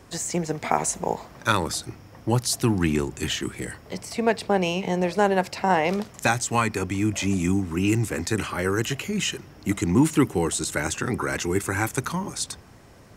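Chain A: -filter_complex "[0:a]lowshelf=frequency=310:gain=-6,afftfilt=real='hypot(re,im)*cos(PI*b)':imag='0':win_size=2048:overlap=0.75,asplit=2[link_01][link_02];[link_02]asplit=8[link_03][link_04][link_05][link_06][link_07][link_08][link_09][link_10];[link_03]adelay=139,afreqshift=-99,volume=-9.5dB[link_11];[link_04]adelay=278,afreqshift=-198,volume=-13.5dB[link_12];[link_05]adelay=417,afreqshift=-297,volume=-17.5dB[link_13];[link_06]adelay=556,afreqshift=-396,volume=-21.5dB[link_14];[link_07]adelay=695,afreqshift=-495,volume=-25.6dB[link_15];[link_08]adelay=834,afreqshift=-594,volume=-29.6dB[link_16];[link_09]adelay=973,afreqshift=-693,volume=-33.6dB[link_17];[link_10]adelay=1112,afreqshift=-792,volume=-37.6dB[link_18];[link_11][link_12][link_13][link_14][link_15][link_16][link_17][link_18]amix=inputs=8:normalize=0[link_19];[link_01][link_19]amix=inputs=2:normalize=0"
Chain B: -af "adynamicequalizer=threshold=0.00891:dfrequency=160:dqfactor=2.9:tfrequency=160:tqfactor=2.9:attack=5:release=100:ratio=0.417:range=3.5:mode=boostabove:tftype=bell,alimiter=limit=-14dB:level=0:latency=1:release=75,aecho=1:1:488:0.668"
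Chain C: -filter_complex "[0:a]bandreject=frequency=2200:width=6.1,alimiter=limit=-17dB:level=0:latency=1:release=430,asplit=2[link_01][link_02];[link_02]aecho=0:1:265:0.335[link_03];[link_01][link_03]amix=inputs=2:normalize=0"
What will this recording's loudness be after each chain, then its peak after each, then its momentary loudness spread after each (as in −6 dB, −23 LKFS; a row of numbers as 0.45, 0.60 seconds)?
−30.0, −24.5, −29.5 LKFS; −3.5, −10.0, −14.5 dBFS; 7, 6, 6 LU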